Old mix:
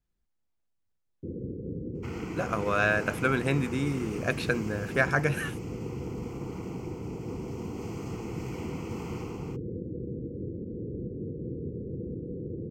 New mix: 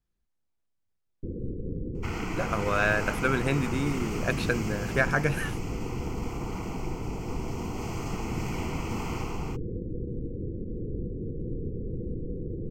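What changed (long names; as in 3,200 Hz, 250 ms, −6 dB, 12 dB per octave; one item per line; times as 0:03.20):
first sound: remove high-pass filter 98 Hz 12 dB per octave
second sound +7.5 dB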